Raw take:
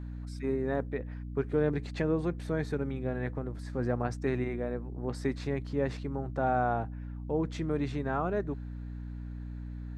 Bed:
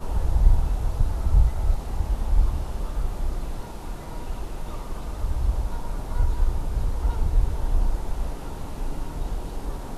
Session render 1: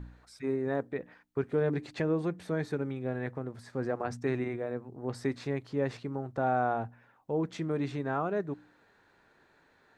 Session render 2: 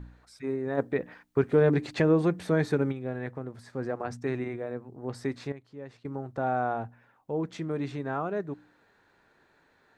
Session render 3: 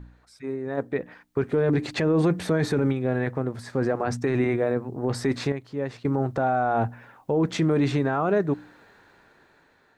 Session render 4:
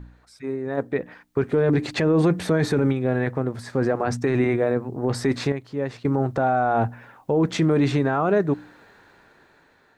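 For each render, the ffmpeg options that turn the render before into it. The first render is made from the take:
-af "bandreject=f=60:t=h:w=4,bandreject=f=120:t=h:w=4,bandreject=f=180:t=h:w=4,bandreject=f=240:t=h:w=4,bandreject=f=300:t=h:w=4"
-filter_complex "[0:a]asplit=3[a][b][c];[a]afade=t=out:st=0.77:d=0.02[d];[b]acontrast=80,afade=t=in:st=0.77:d=0.02,afade=t=out:st=2.91:d=0.02[e];[c]afade=t=in:st=2.91:d=0.02[f];[d][e][f]amix=inputs=3:normalize=0,asplit=3[g][h][i];[g]atrim=end=5.522[j];[h]atrim=start=5.518:end=6.052,asetpts=PTS-STARTPTS,volume=-12dB[k];[i]atrim=start=6.048[l];[j][k]acrossfade=d=0.004:c1=hsin:c2=hsin[m];[m][l]acrossfade=d=0.004:c1=hsin:c2=hsin"
-af "dynaudnorm=f=550:g=7:m=14.5dB,alimiter=limit=-14.5dB:level=0:latency=1:release=11"
-af "volume=2.5dB"

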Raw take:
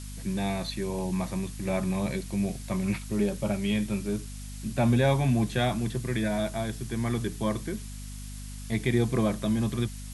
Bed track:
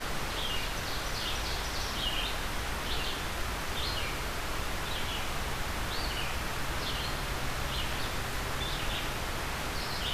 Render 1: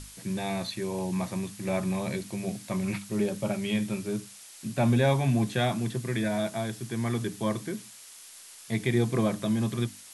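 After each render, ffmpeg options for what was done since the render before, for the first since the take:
-af "bandreject=f=50:t=h:w=6,bandreject=f=100:t=h:w=6,bandreject=f=150:t=h:w=6,bandreject=f=200:t=h:w=6,bandreject=f=250:t=h:w=6,bandreject=f=300:t=h:w=6"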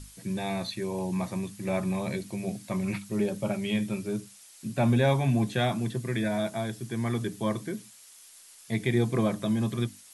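-af "afftdn=nr=6:nf=-49"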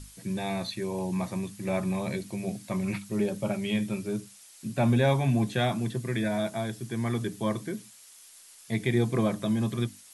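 -af anull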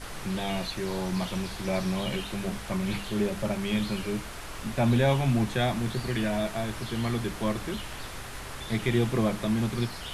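-filter_complex "[1:a]volume=-5.5dB[a];[0:a][a]amix=inputs=2:normalize=0"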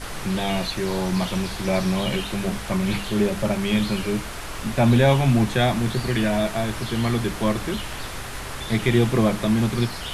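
-af "volume=6.5dB"

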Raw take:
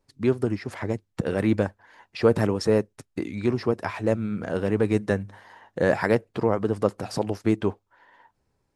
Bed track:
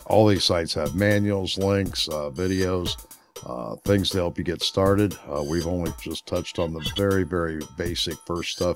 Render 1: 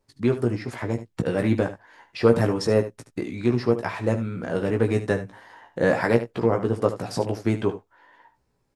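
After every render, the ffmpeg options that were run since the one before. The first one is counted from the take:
-filter_complex "[0:a]asplit=2[a][b];[b]adelay=17,volume=-5dB[c];[a][c]amix=inputs=2:normalize=0,aecho=1:1:74:0.237"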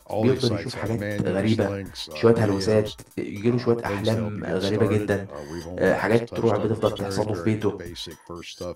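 -filter_complex "[1:a]volume=-9dB[a];[0:a][a]amix=inputs=2:normalize=0"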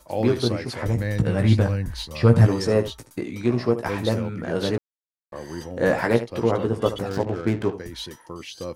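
-filter_complex "[0:a]asplit=3[a][b][c];[a]afade=t=out:st=0.84:d=0.02[d];[b]asubboost=boost=9:cutoff=140,afade=t=in:st=0.84:d=0.02,afade=t=out:st=2.46:d=0.02[e];[c]afade=t=in:st=2.46:d=0.02[f];[d][e][f]amix=inputs=3:normalize=0,asettb=1/sr,asplit=3[g][h][i];[g]atrim=end=7.094[j];[h]atrim=start=7.09:end=7.73,asetpts=PTS-STARTPTS,afade=t=in:d=0.004:c=qsin,afade=t=out:st=0.636:d=0.004:c=qsin,adynamicsmooth=sensitivity=7.5:basefreq=780[k];[i]atrim=start=7.726[l];[j][k]acrossfade=d=0.004:c1=hsin:c2=qsin[m];[m][l]acrossfade=d=0.004:c1=qsin:c2=hsin,asplit=3[n][o][p];[n]atrim=end=4.78,asetpts=PTS-STARTPTS,afade=t=out:st=4.776:d=0.004:c=hsin[q];[o]atrim=start=4.78:end=5.32,asetpts=PTS-STARTPTS,volume=0[r];[p]atrim=start=5.32,asetpts=PTS-STARTPTS,afade=t=in:d=0.004:c=hsin[s];[q][r][s]concat=n=3:v=0:a=1"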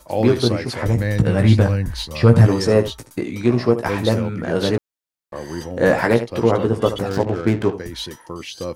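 -af "volume=5dB,alimiter=limit=-2dB:level=0:latency=1"

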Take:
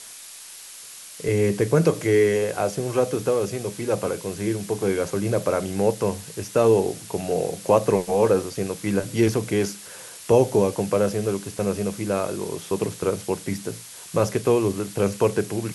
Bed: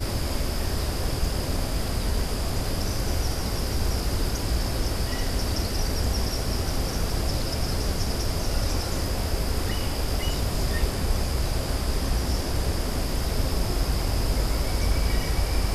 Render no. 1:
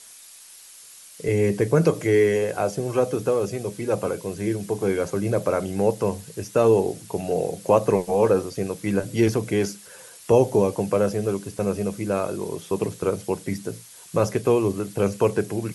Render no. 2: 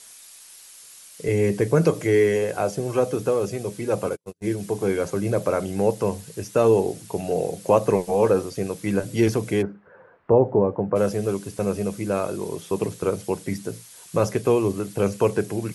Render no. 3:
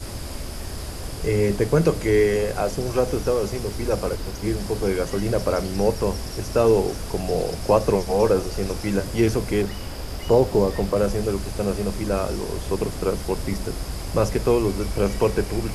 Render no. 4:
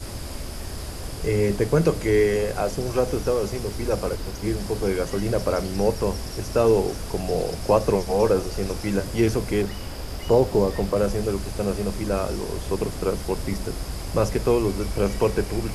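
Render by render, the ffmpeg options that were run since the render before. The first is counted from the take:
-af "afftdn=nr=7:nf=-41"
-filter_complex "[0:a]asplit=3[a][b][c];[a]afade=t=out:st=4.04:d=0.02[d];[b]agate=range=-47dB:threshold=-27dB:ratio=16:release=100:detection=peak,afade=t=in:st=4.04:d=0.02,afade=t=out:st=4.56:d=0.02[e];[c]afade=t=in:st=4.56:d=0.02[f];[d][e][f]amix=inputs=3:normalize=0,asplit=3[g][h][i];[g]afade=t=out:st=9.61:d=0.02[j];[h]lowpass=f=1.5k:w=0.5412,lowpass=f=1.5k:w=1.3066,afade=t=in:st=9.61:d=0.02,afade=t=out:st=10.95:d=0.02[k];[i]afade=t=in:st=10.95:d=0.02[l];[j][k][l]amix=inputs=3:normalize=0"
-filter_complex "[1:a]volume=-5.5dB[a];[0:a][a]amix=inputs=2:normalize=0"
-af "volume=-1dB"

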